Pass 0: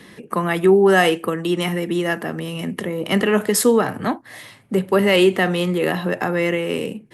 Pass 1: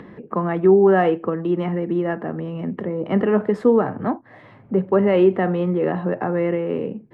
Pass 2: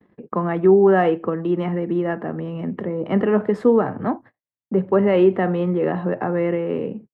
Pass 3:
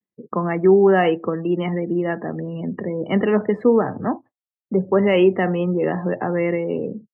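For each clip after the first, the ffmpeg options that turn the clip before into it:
-af "lowpass=1100,acompressor=mode=upward:threshold=0.0178:ratio=2.5"
-af "agate=range=0.00112:threshold=0.0126:ratio=16:detection=peak"
-af "afftdn=nr=35:nf=-37,aexciter=amount=3.2:drive=5.6:freq=2100"

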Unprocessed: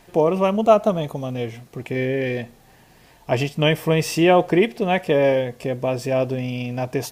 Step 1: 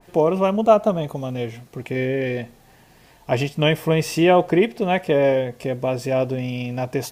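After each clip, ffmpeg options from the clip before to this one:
-af "adynamicequalizer=threshold=0.0316:dfrequency=1600:dqfactor=0.7:tfrequency=1600:tqfactor=0.7:attack=5:release=100:ratio=0.375:range=1.5:mode=cutabove:tftype=highshelf"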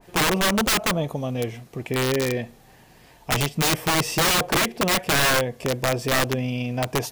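-af "aeval=exprs='(mod(5.62*val(0)+1,2)-1)/5.62':c=same"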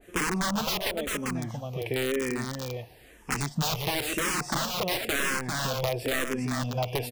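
-filter_complex "[0:a]aecho=1:1:396:0.473,acompressor=threshold=0.0708:ratio=6,asplit=2[s0][s1];[s1]afreqshift=-0.98[s2];[s0][s2]amix=inputs=2:normalize=1"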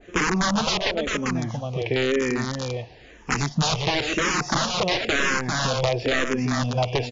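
-af "volume=2.11" -ar 16000 -c:a libmp3lame -b:a 80k

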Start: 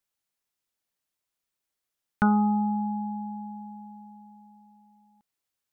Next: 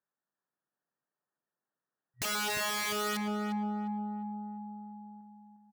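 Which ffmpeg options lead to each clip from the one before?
-filter_complex "[0:a]afftfilt=real='re*between(b*sr/4096,120,1900)':imag='im*between(b*sr/4096,120,1900)':win_size=4096:overlap=0.75,aeval=exprs='(mod(25.1*val(0)+1,2)-1)/25.1':c=same,asplit=2[s0][s1];[s1]adelay=354,lowpass=f=1500:p=1,volume=0.668,asplit=2[s2][s3];[s3]adelay=354,lowpass=f=1500:p=1,volume=0.44,asplit=2[s4][s5];[s5]adelay=354,lowpass=f=1500:p=1,volume=0.44,asplit=2[s6][s7];[s7]adelay=354,lowpass=f=1500:p=1,volume=0.44,asplit=2[s8][s9];[s9]adelay=354,lowpass=f=1500:p=1,volume=0.44,asplit=2[s10][s11];[s11]adelay=354,lowpass=f=1500:p=1,volume=0.44[s12];[s0][s2][s4][s6][s8][s10][s12]amix=inputs=7:normalize=0"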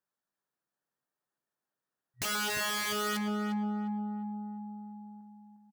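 -filter_complex "[0:a]asplit=2[s0][s1];[s1]adelay=15,volume=0.282[s2];[s0][s2]amix=inputs=2:normalize=0"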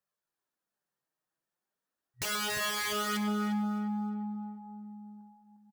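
-af "flanger=delay=1.6:depth=4.8:regen=-34:speed=0.4:shape=sinusoidal,aecho=1:1:307|614|921:0.188|0.0565|0.017,volume=1.5"

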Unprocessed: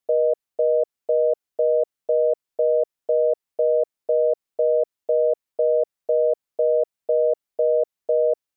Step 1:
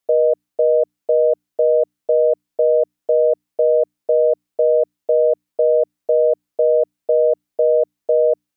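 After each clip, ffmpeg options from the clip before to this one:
-af "bandreject=f=60:t=h:w=6,bandreject=f=120:t=h:w=6,bandreject=f=180:t=h:w=6,bandreject=f=240:t=h:w=6,bandreject=f=300:t=h:w=6,volume=1.68"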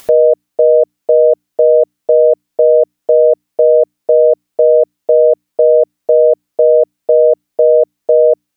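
-af "acompressor=mode=upward:threshold=0.0708:ratio=2.5,volume=2.11"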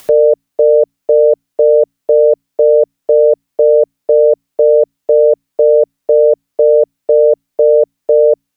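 -af "afreqshift=-23"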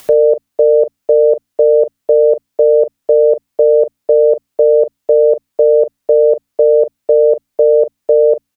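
-filter_complex "[0:a]asplit=2[s0][s1];[s1]adelay=41,volume=0.211[s2];[s0][s2]amix=inputs=2:normalize=0"

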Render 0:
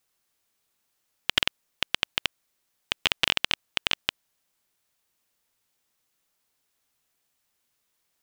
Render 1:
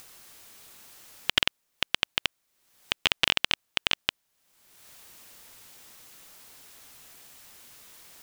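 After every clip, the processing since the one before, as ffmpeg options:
-af "acompressor=mode=upward:threshold=0.0282:ratio=2.5"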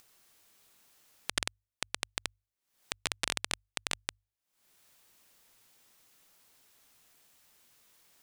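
-af "acompressor=mode=upward:threshold=0.0158:ratio=2.5,aeval=exprs='0.841*(cos(1*acos(clip(val(0)/0.841,-1,1)))-cos(1*PI/2))+0.335*(cos(3*acos(clip(val(0)/0.841,-1,1)))-cos(3*PI/2))':c=same,bandreject=f=50:t=h:w=6,bandreject=f=100:t=h:w=6,volume=0.501"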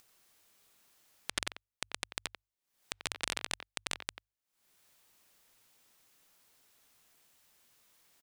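-filter_complex "[0:a]asplit=2[s0][s1];[s1]adelay=90,highpass=300,lowpass=3400,asoftclip=type=hard:threshold=0.168,volume=0.398[s2];[s0][s2]amix=inputs=2:normalize=0,volume=0.708"

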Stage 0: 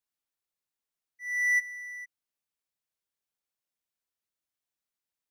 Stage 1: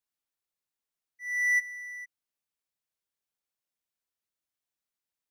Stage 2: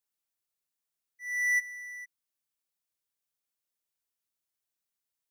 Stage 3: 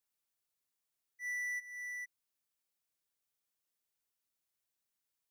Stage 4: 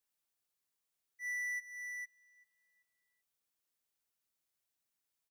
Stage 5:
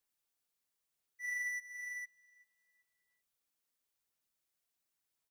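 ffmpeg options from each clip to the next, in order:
-af anull
-af "highshelf=f=5100:g=6.5,volume=0.75"
-af "acompressor=threshold=0.0158:ratio=12"
-filter_complex "[0:a]asplit=2[s0][s1];[s1]adelay=388,lowpass=f=3400:p=1,volume=0.0891,asplit=2[s2][s3];[s3]adelay=388,lowpass=f=3400:p=1,volume=0.37,asplit=2[s4][s5];[s5]adelay=388,lowpass=f=3400:p=1,volume=0.37[s6];[s0][s2][s4][s6]amix=inputs=4:normalize=0"
-af "aphaser=in_gain=1:out_gain=1:delay=4.4:decay=0.22:speed=0.96:type=sinusoidal"

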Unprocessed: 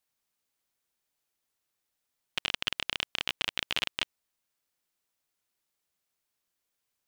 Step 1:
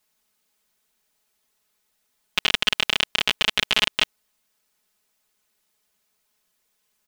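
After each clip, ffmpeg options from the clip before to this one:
-af "aecho=1:1:4.7:0.93,volume=2.51"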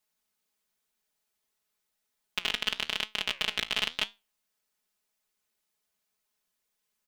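-af "flanger=delay=9.2:depth=9.4:regen=77:speed=0.97:shape=sinusoidal,volume=0.596"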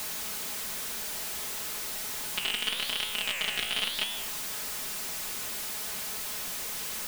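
-af "aeval=exprs='val(0)+0.5*0.0531*sgn(val(0))':c=same,volume=0.668"

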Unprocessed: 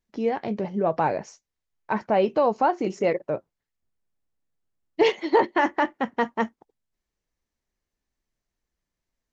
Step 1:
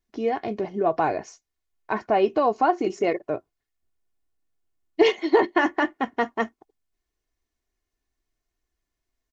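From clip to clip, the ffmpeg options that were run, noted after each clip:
-af "aecho=1:1:2.8:0.53"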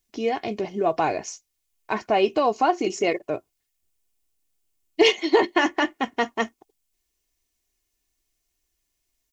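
-af "aexciter=amount=2.5:drive=5.7:freq=2300"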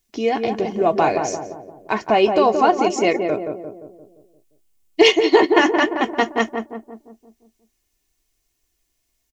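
-filter_complex "[0:a]asplit=2[s0][s1];[s1]adelay=174,lowpass=f=940:p=1,volume=0.631,asplit=2[s2][s3];[s3]adelay=174,lowpass=f=940:p=1,volume=0.55,asplit=2[s4][s5];[s5]adelay=174,lowpass=f=940:p=1,volume=0.55,asplit=2[s6][s7];[s7]adelay=174,lowpass=f=940:p=1,volume=0.55,asplit=2[s8][s9];[s9]adelay=174,lowpass=f=940:p=1,volume=0.55,asplit=2[s10][s11];[s11]adelay=174,lowpass=f=940:p=1,volume=0.55,asplit=2[s12][s13];[s13]adelay=174,lowpass=f=940:p=1,volume=0.55[s14];[s0][s2][s4][s6][s8][s10][s12][s14]amix=inputs=8:normalize=0,volume=1.68"

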